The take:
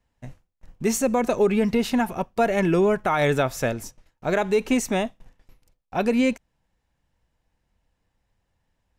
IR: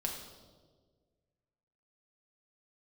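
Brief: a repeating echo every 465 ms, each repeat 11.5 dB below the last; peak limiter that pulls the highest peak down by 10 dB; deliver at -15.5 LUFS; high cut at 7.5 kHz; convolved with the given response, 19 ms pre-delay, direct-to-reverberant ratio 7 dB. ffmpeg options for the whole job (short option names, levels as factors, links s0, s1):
-filter_complex "[0:a]lowpass=7500,alimiter=limit=0.0841:level=0:latency=1,aecho=1:1:465|930|1395:0.266|0.0718|0.0194,asplit=2[s0][s1];[1:a]atrim=start_sample=2205,adelay=19[s2];[s1][s2]afir=irnorm=-1:irlink=0,volume=0.355[s3];[s0][s3]amix=inputs=2:normalize=0,volume=5.01"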